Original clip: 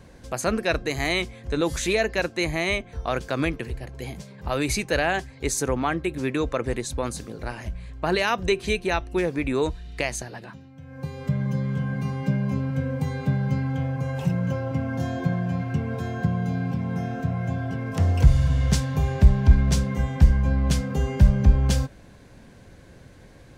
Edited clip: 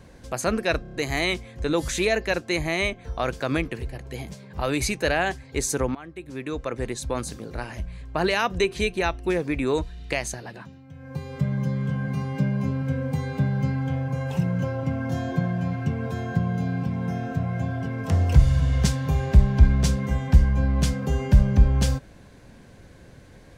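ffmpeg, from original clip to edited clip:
ffmpeg -i in.wav -filter_complex "[0:a]asplit=6[link_01][link_02][link_03][link_04][link_05][link_06];[link_01]atrim=end=0.852[link_07];[link_02]atrim=start=0.818:end=0.852[link_08];[link_03]atrim=start=0.818:end=0.852[link_09];[link_04]atrim=start=0.818:end=0.852[link_10];[link_05]atrim=start=0.818:end=5.83,asetpts=PTS-STARTPTS,afade=type=out:start_time=5.008:duration=0.004:curve=hsin:silence=0.1[link_11];[link_06]atrim=start=5.83,asetpts=PTS-STARTPTS,afade=type=in:duration=1.19:silence=0.1[link_12];[link_07][link_08]acrossfade=duration=0.004:curve1=hsin:curve2=hsin[link_13];[link_13][link_09]acrossfade=duration=0.004:curve1=hsin:curve2=hsin[link_14];[link_14][link_10]acrossfade=duration=0.004:curve1=hsin:curve2=hsin[link_15];[link_11][link_12]concat=n=2:v=0:a=1[link_16];[link_15][link_16]acrossfade=duration=0.004:curve1=hsin:curve2=hsin" out.wav

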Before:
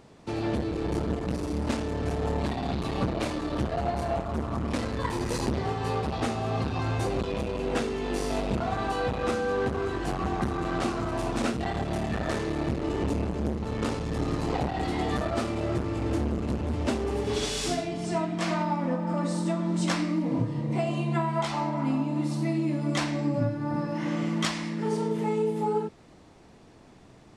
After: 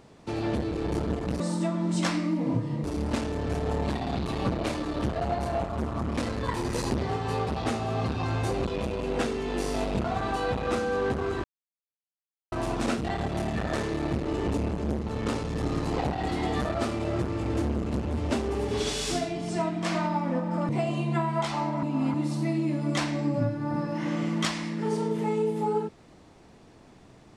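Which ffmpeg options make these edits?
ffmpeg -i in.wav -filter_complex "[0:a]asplit=8[link_01][link_02][link_03][link_04][link_05][link_06][link_07][link_08];[link_01]atrim=end=1.402[link_09];[link_02]atrim=start=19.248:end=20.692[link_10];[link_03]atrim=start=1.398:end=10,asetpts=PTS-STARTPTS,afade=type=out:start_time=8.598:duration=0.004:curve=hsin[link_11];[link_04]atrim=start=10:end=11.08,asetpts=PTS-STARTPTS,volume=0[link_12];[link_05]atrim=start=11.08:end=19.252,asetpts=PTS-STARTPTS,afade=type=in:duration=0.004:curve=hsin[link_13];[link_06]atrim=start=20.688:end=21.832[link_14];[link_07]atrim=start=21.828:end=22.142,asetpts=PTS-STARTPTS,areverse[link_15];[link_08]atrim=start=22.138[link_16];[link_09][link_10]acrossfade=duration=0.004:curve1=hsin:curve2=hsin[link_17];[link_11][link_12][link_13]concat=n=3:v=0:a=1[link_18];[link_17][link_18]acrossfade=duration=0.004:curve1=hsin:curve2=hsin[link_19];[link_19][link_14]acrossfade=duration=0.004:curve1=hsin:curve2=hsin[link_20];[link_20][link_15]acrossfade=duration=0.004:curve1=hsin:curve2=hsin[link_21];[link_21][link_16]acrossfade=duration=0.004:curve1=hsin:curve2=hsin" out.wav

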